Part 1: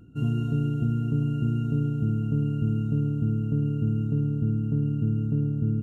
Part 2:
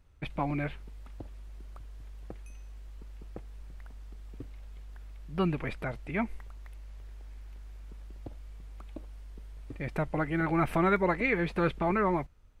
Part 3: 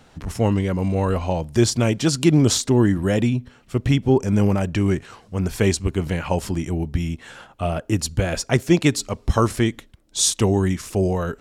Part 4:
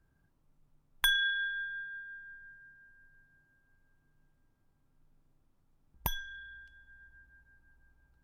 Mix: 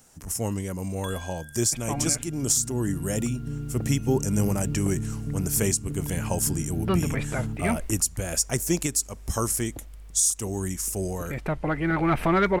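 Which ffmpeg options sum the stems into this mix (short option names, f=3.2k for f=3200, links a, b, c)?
-filter_complex "[0:a]adelay=1750,volume=-9dB[a];[1:a]asoftclip=type=tanh:threshold=-20dB,adelay=1500,volume=2.5dB[b];[2:a]aexciter=amount=9.8:drive=4:freq=5.6k,volume=-9.5dB[c];[3:a]volume=-14dB[d];[a][b][c][d]amix=inputs=4:normalize=0,dynaudnorm=f=210:g=11:m=4dB,alimiter=limit=-11.5dB:level=0:latency=1:release=341"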